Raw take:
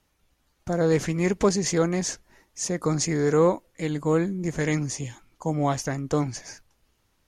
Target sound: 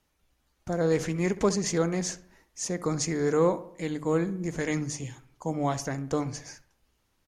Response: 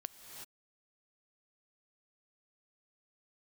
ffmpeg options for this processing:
-filter_complex "[0:a]bandreject=f=50:t=h:w=6,bandreject=f=100:t=h:w=6,bandreject=f=150:t=h:w=6,asplit=2[a][b];[b]adelay=66,lowpass=f=2.5k:p=1,volume=-15dB,asplit=2[c][d];[d]adelay=66,lowpass=f=2.5k:p=1,volume=0.52,asplit=2[e][f];[f]adelay=66,lowpass=f=2.5k:p=1,volume=0.52,asplit=2[g][h];[h]adelay=66,lowpass=f=2.5k:p=1,volume=0.52,asplit=2[i][j];[j]adelay=66,lowpass=f=2.5k:p=1,volume=0.52[k];[c][e][g][i][k]amix=inputs=5:normalize=0[l];[a][l]amix=inputs=2:normalize=0,volume=-3.5dB"

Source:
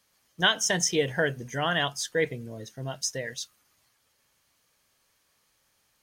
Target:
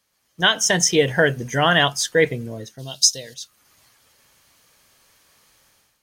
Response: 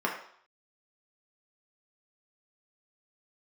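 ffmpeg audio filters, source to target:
-filter_complex "[0:a]asplit=3[a][b][c];[a]afade=t=out:st=2.78:d=0.02[d];[b]highshelf=f=2.7k:t=q:w=3:g=13,afade=t=in:st=2.78:d=0.02,afade=t=out:st=3.33:d=0.02[e];[c]afade=t=in:st=3.33:d=0.02[f];[d][e][f]amix=inputs=3:normalize=0,dynaudnorm=f=160:g=5:m=13dB,volume=-1dB"

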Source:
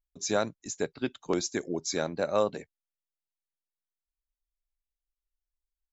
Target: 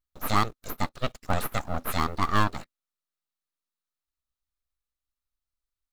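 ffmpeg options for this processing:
-filter_complex "[0:a]aeval=exprs='abs(val(0))':c=same,equalizer=f=250:t=o:w=0.33:g=6,equalizer=f=1.25k:t=o:w=0.33:g=9,equalizer=f=4k:t=o:w=0.33:g=5,asplit=2[a][b];[b]acrusher=bits=6:dc=4:mix=0:aa=0.000001,volume=-6dB[c];[a][c]amix=inputs=2:normalize=0"

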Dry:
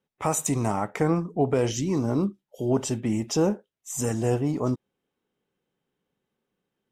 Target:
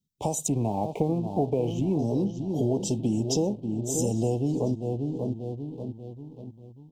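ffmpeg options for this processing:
-filter_complex "[0:a]asplit=2[a][b];[b]adelay=587,lowpass=f=1.1k:p=1,volume=-9.5dB,asplit=2[c][d];[d]adelay=587,lowpass=f=1.1k:p=1,volume=0.53,asplit=2[e][f];[f]adelay=587,lowpass=f=1.1k:p=1,volume=0.53,asplit=2[g][h];[h]adelay=587,lowpass=f=1.1k:p=1,volume=0.53,asplit=2[i][j];[j]adelay=587,lowpass=f=1.1k:p=1,volume=0.53,asplit=2[k][l];[l]adelay=587,lowpass=f=1.1k:p=1,volume=0.53[m];[c][e][g][i][k][m]amix=inputs=6:normalize=0[n];[a][n]amix=inputs=2:normalize=0,acompressor=threshold=-28dB:ratio=6,asettb=1/sr,asplit=3[o][p][q];[o]atrim=end=0.484[r];[p]atrim=start=0.48:end=1.99,asetpts=PTS-STARTPTS,afade=t=in:d=0.004:c=qsin,afade=t=out:st=1.506:d=0.004:c=qsin,highshelf=f=3.2k:t=q:w=3:g=-14[s];[q]atrim=start=1.986[t];[r][s]acrossfade=d=0.004:c1=hsin:c2=qsin[u];[u][t]acrossfade=d=0.004:c1=qsin:c2=hsin,acrossover=split=230|3900[v][w][x];[w]aeval=exprs='sgn(val(0))*max(abs(val(0))-0.00141,0)':c=same[y];[x]equalizer=f=11k:w=1.4:g=-8[z];[v][y][z]amix=inputs=3:normalize=0,asuperstop=centerf=1600:order=8:qfactor=0.75,volume=6dB"

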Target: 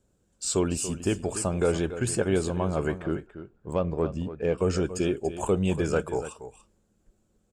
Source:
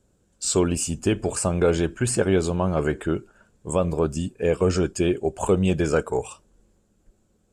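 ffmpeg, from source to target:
-filter_complex "[0:a]asettb=1/sr,asplit=3[a][b][c];[a]atrim=end=2.984[d];[b]atrim=start=2.98:end=4.58,asetpts=PTS-STARTPTS,afade=t=in:d=0.004:c=qsin,afade=t=out:st=1.596:d=0.004:c=qsin,adynamicsmooth=sensitivity=1.5:basefreq=2.6k[e];[c]atrim=start=4.576[f];[d][e]acrossfade=d=0.004:c1=hsin:c2=qsin[g];[g][f]acrossfade=d=0.004:c1=qsin:c2=hsin,asplit=2[h][i];[i]aecho=0:1:286:0.237[j];[h][j]amix=inputs=2:normalize=0,volume=-4.5dB"

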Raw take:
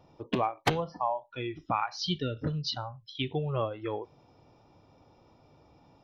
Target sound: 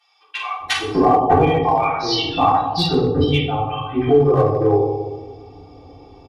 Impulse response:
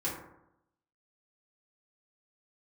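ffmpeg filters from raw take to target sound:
-filter_complex "[0:a]asetrate=42336,aresample=44100,acrossover=split=1300[a][b];[a]adelay=600[c];[c][b]amix=inputs=2:normalize=0[d];[1:a]atrim=start_sample=2205,asetrate=23373,aresample=44100[e];[d][e]afir=irnorm=-1:irlink=0,asplit=2[f][g];[g]asoftclip=type=hard:threshold=-15.5dB,volume=-3.5dB[h];[f][h]amix=inputs=2:normalize=0,aecho=1:1:2.6:0.87"

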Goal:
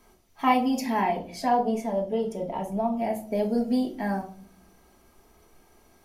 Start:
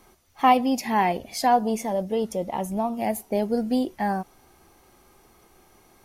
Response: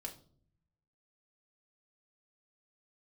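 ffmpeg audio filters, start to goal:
-filter_complex "[0:a]asettb=1/sr,asplit=3[a][b][c];[a]atrim=end=1.014[d];[b]atrim=start=1.01:end=3.27,asetpts=PTS-STARTPTS,afade=t=in:d=0.004:c=qsin,afade=t=out:st=2.256:d=0.004:c=qsin,highshelf=f=4.2k:g=-8.5[e];[c]atrim=start=3.266[f];[d][e]acrossfade=d=0.004:c1=hsin:c2=qsin[g];[g][f]acrossfade=d=0.004:c1=qsin:c2=hsin[h];[1:a]atrim=start_sample=2205[i];[h][i]afir=irnorm=-1:irlink=0"

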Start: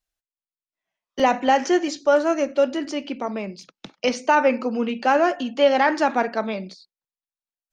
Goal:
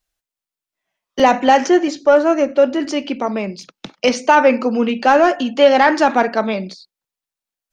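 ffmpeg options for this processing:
-filter_complex "[0:a]asettb=1/sr,asplit=3[a][b][c];[a]atrim=end=1.674[d];[b]atrim=start=1.67:end=2.8,asetpts=PTS-STARTPTS,afade=t=in:d=0.004:c=qsin,afade=t=out:st=1.126:d=0.004:c=qsin,highshelf=f=2.9k:g=-8[e];[c]atrim=start=2.796[f];[d][e]acrossfade=d=0.004:c1=hsin:c2=qsin[g];[g][f]acrossfade=d=0.004:c1=qsin:c2=hsin,acontrast=38,volume=1.5dB"

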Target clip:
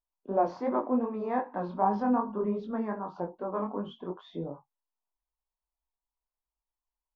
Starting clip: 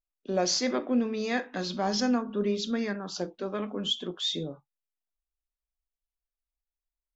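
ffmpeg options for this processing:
-af "flanger=delay=19:depth=4.8:speed=2.6,lowpass=f=960:t=q:w=5"

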